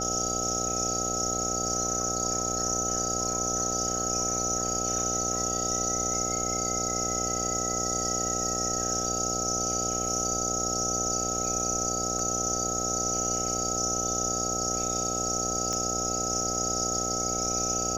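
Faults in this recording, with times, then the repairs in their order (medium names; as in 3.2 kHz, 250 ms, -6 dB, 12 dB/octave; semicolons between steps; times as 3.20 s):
buzz 60 Hz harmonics 13 -34 dBFS
whine 1.3 kHz -34 dBFS
12.19 s: dropout 2.8 ms
15.73 s: pop -18 dBFS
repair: de-click; band-stop 1.3 kHz, Q 30; de-hum 60 Hz, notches 13; interpolate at 12.19 s, 2.8 ms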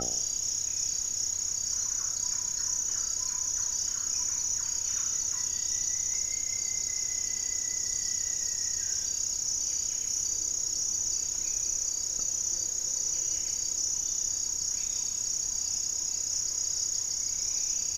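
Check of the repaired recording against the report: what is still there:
nothing left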